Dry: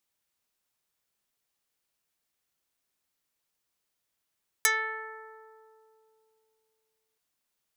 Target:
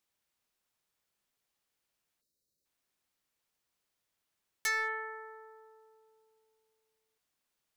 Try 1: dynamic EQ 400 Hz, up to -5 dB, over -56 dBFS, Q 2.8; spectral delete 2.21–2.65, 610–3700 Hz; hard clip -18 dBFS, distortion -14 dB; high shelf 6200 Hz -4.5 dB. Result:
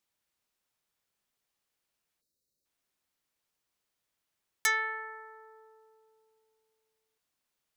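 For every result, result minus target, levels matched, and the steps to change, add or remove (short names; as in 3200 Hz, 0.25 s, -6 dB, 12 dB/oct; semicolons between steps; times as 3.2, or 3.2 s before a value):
hard clip: distortion -8 dB; 500 Hz band -5.0 dB
change: hard clip -27 dBFS, distortion -6 dB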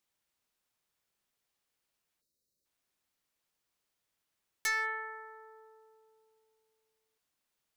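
500 Hz band -4.0 dB
remove: dynamic EQ 400 Hz, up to -5 dB, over -56 dBFS, Q 2.8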